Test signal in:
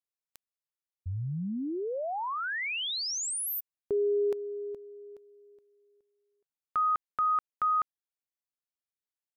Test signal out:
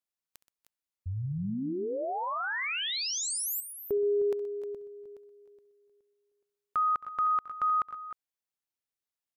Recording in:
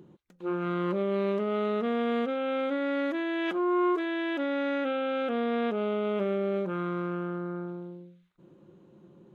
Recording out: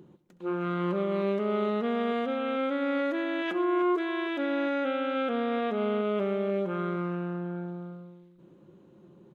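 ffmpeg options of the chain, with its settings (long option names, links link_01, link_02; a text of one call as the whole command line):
ffmpeg -i in.wav -af "aecho=1:1:67|125|291|309:0.126|0.15|0.1|0.266" out.wav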